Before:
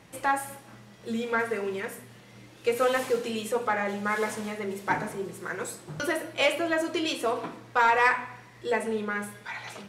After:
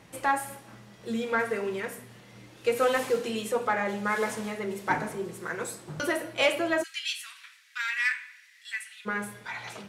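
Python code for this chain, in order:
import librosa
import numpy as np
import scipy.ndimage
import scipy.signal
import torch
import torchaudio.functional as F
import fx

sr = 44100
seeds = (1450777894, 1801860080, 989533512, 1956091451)

y = fx.steep_highpass(x, sr, hz=1700.0, slope=36, at=(6.82, 9.05), fade=0.02)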